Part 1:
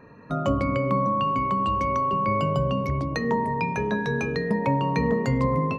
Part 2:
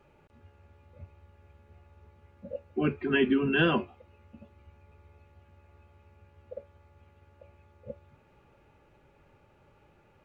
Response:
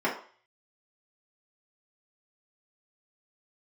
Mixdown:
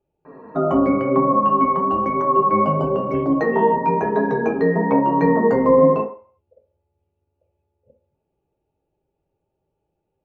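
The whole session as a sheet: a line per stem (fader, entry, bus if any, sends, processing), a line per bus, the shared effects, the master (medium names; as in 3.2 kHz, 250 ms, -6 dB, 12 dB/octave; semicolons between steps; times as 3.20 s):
+0.5 dB, 0.25 s, send -5.5 dB, flange 1 Hz, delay 6.6 ms, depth 5.6 ms, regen +30%; FFT filter 160 Hz 0 dB, 750 Hz +8 dB, 2.5 kHz -3 dB
-14.0 dB, 0.00 s, send -17 dB, high-order bell 1.5 kHz -12.5 dB 1.3 oct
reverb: on, RT60 0.45 s, pre-delay 3 ms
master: treble shelf 2.1 kHz -11.5 dB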